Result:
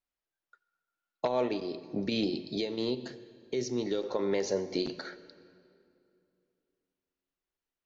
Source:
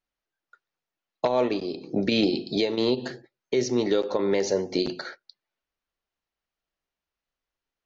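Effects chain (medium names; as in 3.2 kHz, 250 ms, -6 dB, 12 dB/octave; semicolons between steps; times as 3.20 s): 1.79–4.04 s: peaking EQ 1.1 kHz -6 dB 2.7 oct; reverberation RT60 2.7 s, pre-delay 70 ms, DRR 16 dB; trim -6 dB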